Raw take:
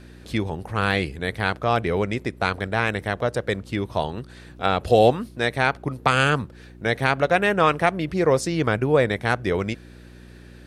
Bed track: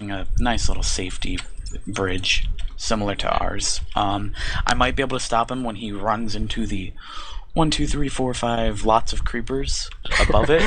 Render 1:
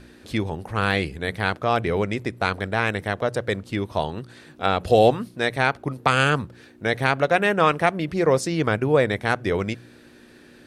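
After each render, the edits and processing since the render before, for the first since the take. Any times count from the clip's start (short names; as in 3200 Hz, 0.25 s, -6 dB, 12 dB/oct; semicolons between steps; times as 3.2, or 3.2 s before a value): de-hum 60 Hz, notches 3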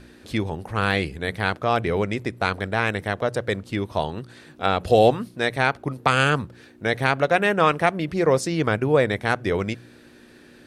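nothing audible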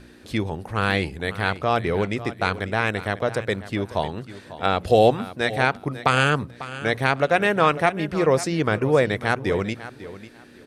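feedback echo 0.546 s, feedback 21%, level -15 dB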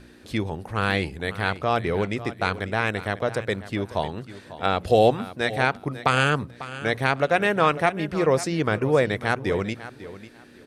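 gain -1.5 dB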